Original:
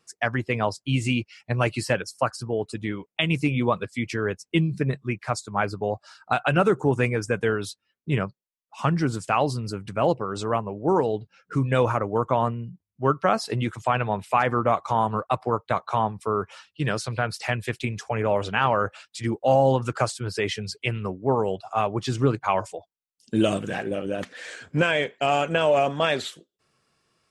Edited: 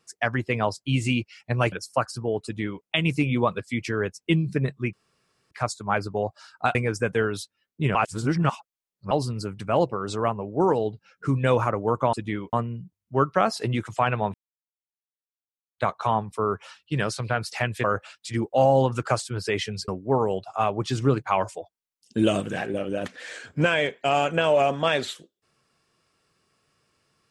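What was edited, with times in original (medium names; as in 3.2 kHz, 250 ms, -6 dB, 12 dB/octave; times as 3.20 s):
1.72–1.97 s: delete
2.69–3.09 s: copy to 12.41 s
5.18 s: insert room tone 0.58 s
6.42–7.03 s: delete
8.23–9.39 s: reverse
14.22–15.66 s: mute
17.72–18.74 s: delete
20.78–21.05 s: delete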